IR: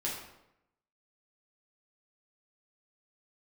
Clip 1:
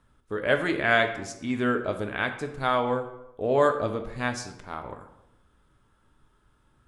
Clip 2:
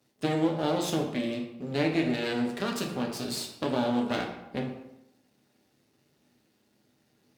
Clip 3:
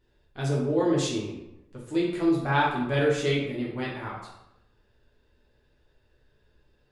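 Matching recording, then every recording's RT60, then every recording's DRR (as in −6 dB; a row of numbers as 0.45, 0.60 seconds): 3; 0.85, 0.85, 0.85 seconds; 5.5, 1.0, −5.5 decibels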